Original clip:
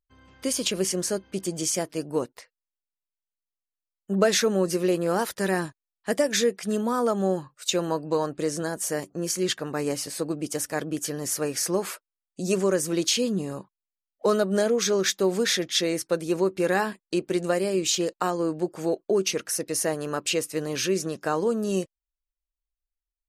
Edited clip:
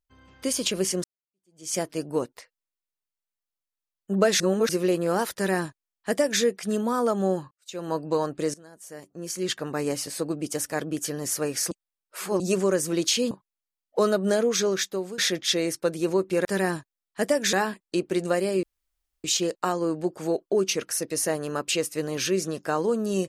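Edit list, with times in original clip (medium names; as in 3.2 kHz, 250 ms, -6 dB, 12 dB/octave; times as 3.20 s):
1.04–1.74 s: fade in exponential
4.40–4.69 s: reverse
5.34–6.42 s: copy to 16.72 s
7.51–7.96 s: fade in quadratic
8.54–9.62 s: fade in quadratic, from -20.5 dB
11.71–12.40 s: reverse
13.31–13.58 s: delete
14.87–15.45 s: fade out linear, to -14.5 dB
17.82 s: insert room tone 0.61 s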